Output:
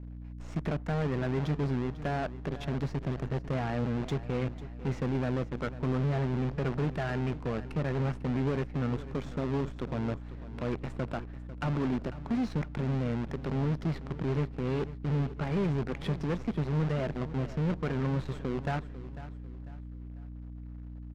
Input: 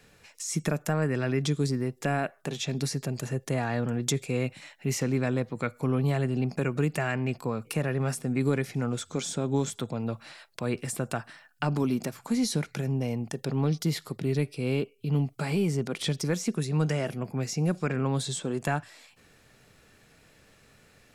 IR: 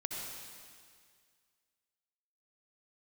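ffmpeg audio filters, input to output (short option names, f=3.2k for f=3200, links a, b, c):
-filter_complex "[0:a]acrusher=bits=6:dc=4:mix=0:aa=0.000001,aeval=exprs='val(0)+0.00891*(sin(2*PI*60*n/s)+sin(2*PI*2*60*n/s)/2+sin(2*PI*3*60*n/s)/3+sin(2*PI*4*60*n/s)/4+sin(2*PI*5*60*n/s)/5)':c=same,asoftclip=type=tanh:threshold=-23.5dB,adynamicsmooth=sensitivity=2:basefreq=1.2k,asplit=2[a][b];[b]aecho=0:1:497|994|1491:0.178|0.0658|0.0243[c];[a][c]amix=inputs=2:normalize=0"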